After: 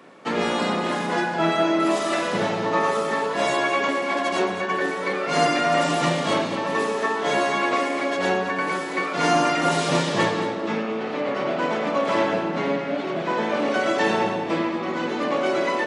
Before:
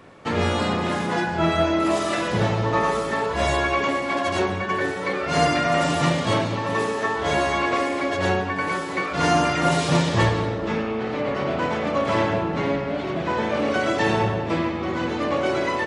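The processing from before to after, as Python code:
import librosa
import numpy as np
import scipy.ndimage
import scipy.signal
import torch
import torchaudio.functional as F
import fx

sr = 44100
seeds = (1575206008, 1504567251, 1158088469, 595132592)

p1 = scipy.signal.sosfilt(scipy.signal.butter(4, 180.0, 'highpass', fs=sr, output='sos'), x)
y = p1 + fx.echo_single(p1, sr, ms=219, db=-11.0, dry=0)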